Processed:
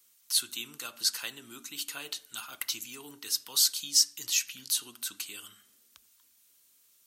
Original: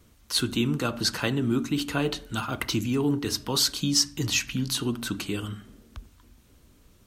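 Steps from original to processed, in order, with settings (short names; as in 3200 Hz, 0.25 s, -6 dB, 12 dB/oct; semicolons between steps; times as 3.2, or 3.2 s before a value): differentiator; gain +2 dB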